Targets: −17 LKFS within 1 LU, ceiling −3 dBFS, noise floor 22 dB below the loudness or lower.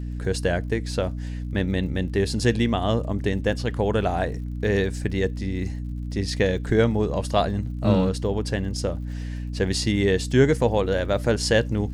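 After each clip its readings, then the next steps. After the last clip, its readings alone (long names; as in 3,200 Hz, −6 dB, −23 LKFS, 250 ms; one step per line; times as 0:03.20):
crackle rate 53 per second; mains hum 60 Hz; hum harmonics up to 300 Hz; level of the hum −28 dBFS; integrated loudness −24.0 LKFS; sample peak −5.5 dBFS; target loudness −17.0 LKFS
→ click removal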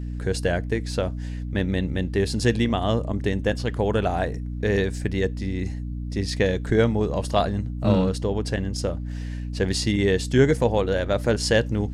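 crackle rate 0.084 per second; mains hum 60 Hz; hum harmonics up to 300 Hz; level of the hum −28 dBFS
→ mains-hum notches 60/120/180/240/300 Hz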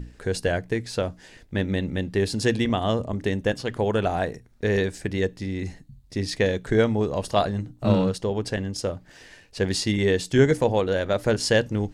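mains hum none found; integrated loudness −25.0 LKFS; sample peak −6.0 dBFS; target loudness −17.0 LKFS
→ level +8 dB
brickwall limiter −3 dBFS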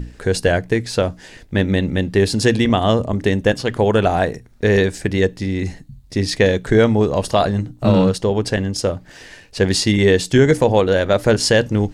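integrated loudness −17.5 LKFS; sample peak −3.0 dBFS; background noise floor −45 dBFS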